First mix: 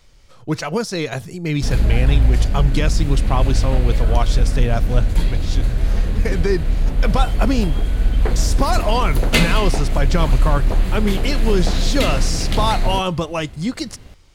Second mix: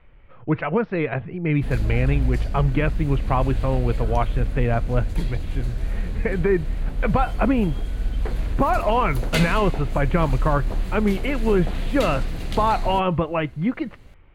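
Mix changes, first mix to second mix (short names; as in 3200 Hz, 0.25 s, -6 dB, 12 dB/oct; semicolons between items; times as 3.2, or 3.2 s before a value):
speech: add steep low-pass 2600 Hz 36 dB/oct; background -8.0 dB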